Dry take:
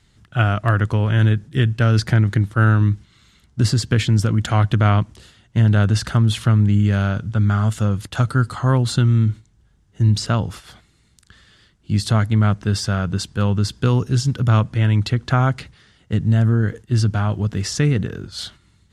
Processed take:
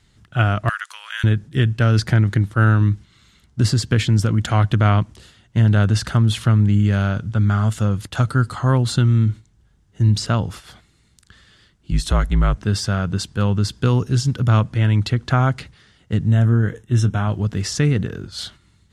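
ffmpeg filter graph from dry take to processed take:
-filter_complex "[0:a]asettb=1/sr,asplit=3[a][b][c];[a]atrim=end=0.694[d];[b]atrim=start=0.69:end=1.24,asetpts=PTS-STARTPTS,afade=t=in:d=0.004:c=qsin,afade=t=out:st=0.546:d=0.004:c=qsin,highpass=f=1.3k:w=0.5412,highpass=f=1.3k:w=1.3066,aemphasis=mode=production:type=cd[e];[c]atrim=start=1.236[f];[d][e]acrossfade=d=0.004:c1=hsin:c2=qsin[g];[g][f]acrossfade=d=0.004:c1=qsin:c2=hsin,asettb=1/sr,asplit=3[h][i][j];[h]atrim=end=11.914[k];[i]atrim=start=11.91:end=12.57,asetpts=PTS-STARTPTS,afade=t=in:d=0.004:c=qsin,afade=t=out:st=0.656:d=0.004:c=qsin,bandreject=f=4.7k:w=7.4,afreqshift=-52[l];[j]atrim=start=12.566[m];[k][l]acrossfade=d=0.004:c1=hsin:c2=qsin[n];[n][m]acrossfade=d=0.004:c1=qsin:c2=hsin,asettb=1/sr,asplit=3[o][p][q];[o]atrim=end=16.274[r];[p]atrim=start=16.27:end=17.28,asetpts=PTS-STARTPTS,afade=t=in:d=0.004:c=qsin,afade=t=out:st=1.006:d=0.004:c=qsin,asuperstop=centerf=4600:order=12:qfactor=4.1,asplit=2[s][t];[t]adelay=25,volume=-13.5dB[u];[s][u]amix=inputs=2:normalize=0,atrim=end_sample=44541[v];[q]atrim=start=17.276[w];[r][v]acrossfade=d=0.004:c1=hsin:c2=qsin[x];[x][w]acrossfade=d=0.004:c1=qsin:c2=hsin"

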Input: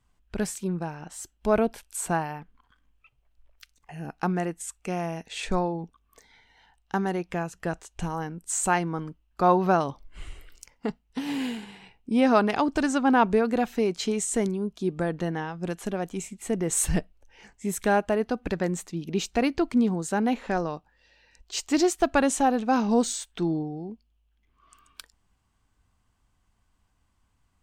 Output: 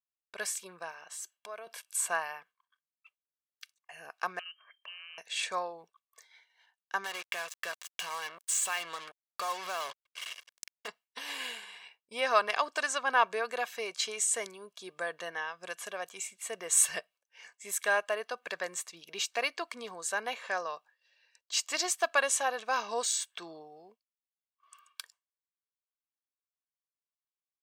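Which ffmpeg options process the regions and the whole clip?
-filter_complex "[0:a]asettb=1/sr,asplit=3[a][b][c];[a]atrim=end=0.914[d];[b]atrim=start=0.91:end=1.67,asetpts=PTS-STARTPTS,afade=t=in:d=0.004:c=qsin,afade=t=out:st=0.756:d=0.004:c=qsin,highpass=160,acompressor=threshold=-39dB:ratio=2.5:attack=3.2:release=140:knee=1:detection=peak[e];[c]atrim=start=1.666[f];[d][e]acrossfade=d=0.004:c1=hsin:c2=qsin[g];[g][f]acrossfade=d=0.004:c1=qsin:c2=hsin,asettb=1/sr,asplit=3[h][i][j];[h]atrim=end=4.394[k];[i]atrim=start=4.39:end=5.18,asetpts=PTS-STARTPTS,afade=t=in:d=0.004:c=qsin,afade=t=out:st=0.786:d=0.004:c=qsin,lowpass=f=2.7k:t=q:w=0.5098,lowpass=f=2.7k:t=q:w=0.6013,lowpass=f=2.7k:t=q:w=0.9,lowpass=f=2.7k:t=q:w=2.563,afreqshift=-3200,equalizer=f=1.6k:t=o:w=0.86:g=4.5,acompressor=threshold=-45dB:ratio=5:attack=3.2:release=140:knee=1:detection=peak[l];[j]atrim=start=5.176[m];[k][l]acrossfade=d=0.004:c1=hsin:c2=qsin[n];[n][m]acrossfade=d=0.004:c1=qsin:c2=hsin,asettb=1/sr,asplit=3[o][p][q];[o]atrim=end=7.044[r];[p]atrim=start=7.04:end=10.88,asetpts=PTS-STARTPTS,afade=t=in:d=0.004:c=qsin,afade=t=out:st=3.836:d=0.004:c=qsin,equalizer=f=3.1k:t=o:w=1.1:g=10,acompressor=threshold=-27dB:ratio=4:attack=3.2:release=140:knee=1:detection=peak,acrusher=bits=5:mix=0:aa=0.5[s];[q]atrim=start=10.876[t];[r][s]acrossfade=d=0.004:c1=hsin:c2=qsin[u];[u][t]acrossfade=d=0.004:c1=qsin:c2=hsin,highpass=1k,aecho=1:1:1.8:0.54,agate=range=-33dB:threshold=-54dB:ratio=3:detection=peak"

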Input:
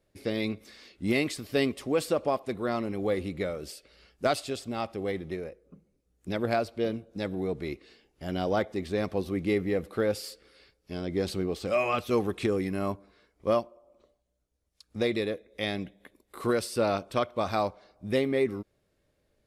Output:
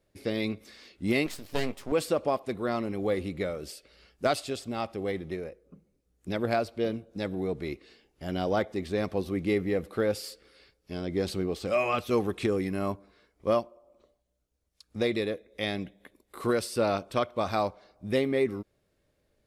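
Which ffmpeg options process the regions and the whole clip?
-filter_complex "[0:a]asettb=1/sr,asplit=3[a][b][c];[a]atrim=end=1.264[d];[b]atrim=start=1.26:end=1.92,asetpts=PTS-STARTPTS,afade=t=in:d=0.004:c=qsin,afade=t=out:st=0.656:d=0.004:c=qsin,aeval=exprs='max(val(0),0)':c=same,asplit=2[e][f];[f]adelay=20,volume=-12.5dB[g];[e][g]amix=inputs=2:normalize=0,atrim=end_sample=29106[h];[c]atrim=start=1.916[i];[d][h]acrossfade=d=0.004:c1=hsin:c2=qsin[j];[j][i]acrossfade=d=0.004:c1=qsin:c2=hsin"

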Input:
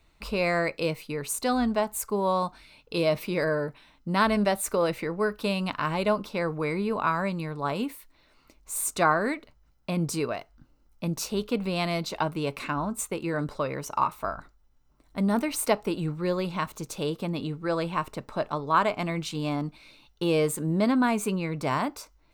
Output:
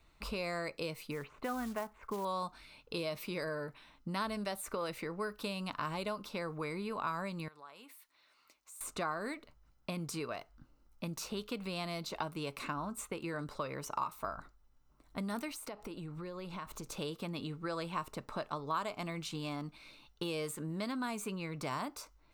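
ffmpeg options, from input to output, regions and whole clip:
-filter_complex "[0:a]asettb=1/sr,asplit=3[a][b][c];[a]atrim=end=1.114[d];[b]atrim=start=1.11:end=2.25,asetpts=PTS-STARTPTS,afade=t=in:d=0.004:c=qsin,afade=t=out:st=1.136:d=0.004:c=qsin,lowpass=f=2.4k:w=0.5412,lowpass=f=2.4k:w=1.3066,acrusher=bits=6:mode=log:mix=0:aa=0.000001[e];[c]atrim=start=2.246[f];[d][e]acrossfade=d=0.004:c1=hsin:c2=qsin[g];[g][f]acrossfade=d=0.004:c1=qsin:c2=hsin,asettb=1/sr,asplit=3[h][i][j];[h]atrim=end=7.484[k];[i]atrim=start=7.48:end=8.81,asetpts=PTS-STARTPTS,afade=t=in:d=0.004:c=qsin,afade=t=out:st=1.326:d=0.004:c=qsin,highpass=f=1.4k:p=1,acompressor=threshold=-52dB:ratio=3:attack=3.2:release=140:knee=1:detection=peak[l];[j]atrim=start=8.806[m];[k][l]acrossfade=d=0.004:c1=hsin:c2=qsin[n];[n][m]acrossfade=d=0.004:c1=qsin:c2=hsin,asettb=1/sr,asplit=3[o][p][q];[o]atrim=end=15.514[r];[p]atrim=start=15.51:end=16.92,asetpts=PTS-STARTPTS,afade=t=in:d=0.004:c=qsin,afade=t=out:st=1.406:d=0.004:c=qsin,asubboost=boost=5.5:cutoff=67,acompressor=threshold=-36dB:ratio=10:attack=3.2:release=140:knee=1:detection=peak[s];[q]atrim=start=16.916[t];[r][s]acrossfade=d=0.004:c1=hsin:c2=qsin[u];[u][t]acrossfade=d=0.004:c1=qsin:c2=hsin,acrossover=split=1300|3800[v][w][x];[v]acompressor=threshold=-35dB:ratio=4[y];[w]acompressor=threshold=-44dB:ratio=4[z];[x]acompressor=threshold=-41dB:ratio=4[aa];[y][z][aa]amix=inputs=3:normalize=0,equalizer=f=1.2k:t=o:w=0.55:g=3.5,volume=-3.5dB"

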